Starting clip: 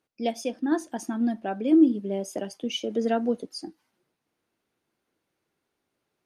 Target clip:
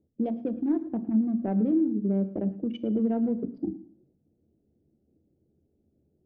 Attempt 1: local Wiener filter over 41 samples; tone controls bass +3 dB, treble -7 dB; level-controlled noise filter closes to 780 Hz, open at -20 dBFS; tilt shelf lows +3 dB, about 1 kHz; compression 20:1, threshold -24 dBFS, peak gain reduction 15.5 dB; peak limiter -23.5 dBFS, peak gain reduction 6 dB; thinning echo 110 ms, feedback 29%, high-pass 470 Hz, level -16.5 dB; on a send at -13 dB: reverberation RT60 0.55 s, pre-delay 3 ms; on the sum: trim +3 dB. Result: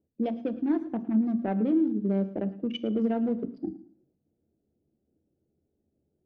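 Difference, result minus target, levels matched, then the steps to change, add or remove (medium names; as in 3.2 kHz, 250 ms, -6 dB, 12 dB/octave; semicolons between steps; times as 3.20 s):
1 kHz band +3.5 dB
change: tilt shelf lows +10.5 dB, about 1 kHz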